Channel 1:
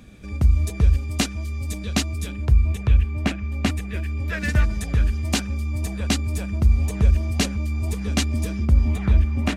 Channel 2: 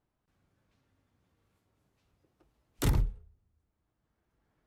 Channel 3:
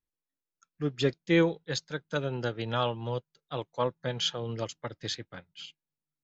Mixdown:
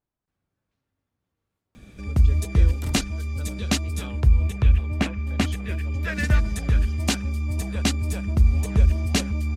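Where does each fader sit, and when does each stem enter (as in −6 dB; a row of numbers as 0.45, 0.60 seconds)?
−0.5, −7.0, −15.5 decibels; 1.75, 0.00, 1.25 seconds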